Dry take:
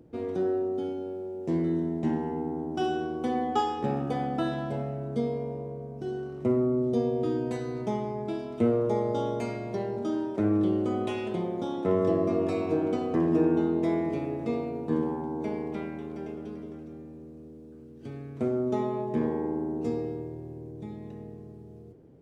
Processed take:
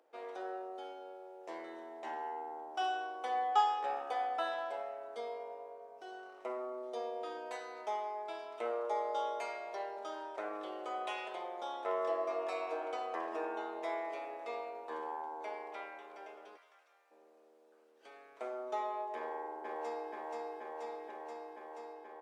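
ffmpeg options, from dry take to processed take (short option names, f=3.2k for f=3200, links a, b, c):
-filter_complex "[0:a]asplit=3[a][b][c];[a]afade=t=out:st=16.56:d=0.02[d];[b]highpass=1.2k,afade=t=in:st=16.56:d=0.02,afade=t=out:st=17.1:d=0.02[e];[c]afade=t=in:st=17.1:d=0.02[f];[d][e][f]amix=inputs=3:normalize=0,asplit=2[g][h];[h]afade=t=in:st=19.16:d=0.01,afade=t=out:st=20.12:d=0.01,aecho=0:1:480|960|1440|1920|2400|2880|3360|3840|4320|4800|5280|5760:0.841395|0.673116|0.538493|0.430794|0.344635|0.275708|0.220567|0.176453|0.141163|0.11293|0.0903441|0.0722753[i];[g][i]amix=inputs=2:normalize=0,highpass=f=650:w=0.5412,highpass=f=650:w=1.3066,highshelf=f=4.1k:g=-7"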